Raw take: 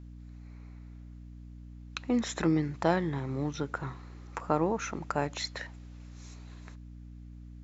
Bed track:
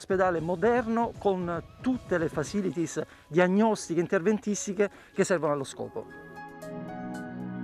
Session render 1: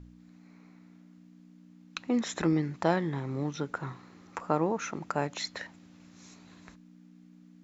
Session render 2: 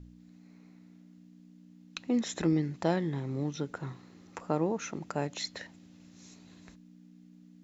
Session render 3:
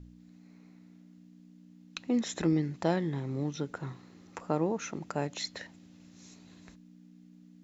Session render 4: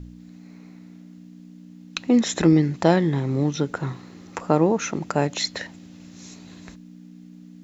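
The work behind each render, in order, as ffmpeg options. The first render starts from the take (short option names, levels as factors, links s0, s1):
-af "bandreject=f=60:t=h:w=4,bandreject=f=120:t=h:w=4"
-af "equalizer=f=1200:t=o:w=1.4:g=-7.5,bandreject=f=2300:w=26"
-af anull
-af "volume=3.55"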